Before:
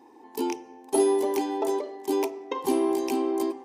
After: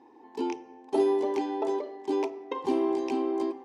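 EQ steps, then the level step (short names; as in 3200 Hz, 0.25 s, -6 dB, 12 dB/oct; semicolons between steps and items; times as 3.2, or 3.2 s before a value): air absorption 130 m; -2.0 dB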